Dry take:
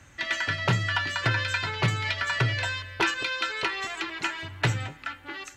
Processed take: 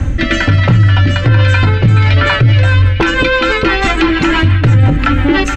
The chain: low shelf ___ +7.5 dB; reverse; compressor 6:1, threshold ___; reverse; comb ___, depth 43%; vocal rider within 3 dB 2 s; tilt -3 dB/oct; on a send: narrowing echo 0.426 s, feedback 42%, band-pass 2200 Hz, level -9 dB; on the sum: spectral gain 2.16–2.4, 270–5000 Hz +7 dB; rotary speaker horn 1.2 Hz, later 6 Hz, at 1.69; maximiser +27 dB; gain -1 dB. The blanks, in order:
420 Hz, -29 dBFS, 3.8 ms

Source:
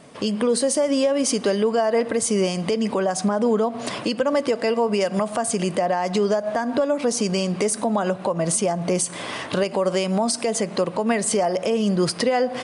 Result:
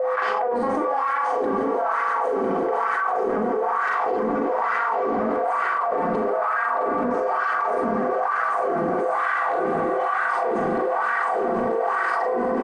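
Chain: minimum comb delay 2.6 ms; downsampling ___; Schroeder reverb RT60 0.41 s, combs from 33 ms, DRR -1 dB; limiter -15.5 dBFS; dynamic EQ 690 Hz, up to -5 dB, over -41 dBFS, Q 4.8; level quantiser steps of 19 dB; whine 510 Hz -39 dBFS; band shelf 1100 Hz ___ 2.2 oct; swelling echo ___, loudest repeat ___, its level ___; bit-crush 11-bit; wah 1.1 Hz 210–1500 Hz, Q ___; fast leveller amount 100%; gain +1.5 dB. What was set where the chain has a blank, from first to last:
22050 Hz, +13 dB, 0.167 s, 5, -8.5 dB, 2.6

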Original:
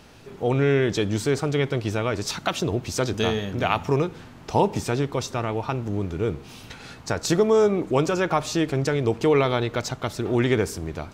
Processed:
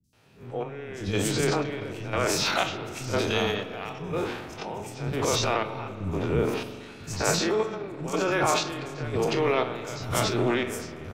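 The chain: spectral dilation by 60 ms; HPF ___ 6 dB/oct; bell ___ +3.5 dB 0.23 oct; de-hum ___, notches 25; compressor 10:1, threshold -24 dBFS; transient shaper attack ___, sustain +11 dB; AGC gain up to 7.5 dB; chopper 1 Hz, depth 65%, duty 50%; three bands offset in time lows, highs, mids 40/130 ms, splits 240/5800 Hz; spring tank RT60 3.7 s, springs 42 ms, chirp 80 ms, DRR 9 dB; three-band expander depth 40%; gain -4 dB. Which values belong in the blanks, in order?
120 Hz, 2500 Hz, 218.7 Hz, -3 dB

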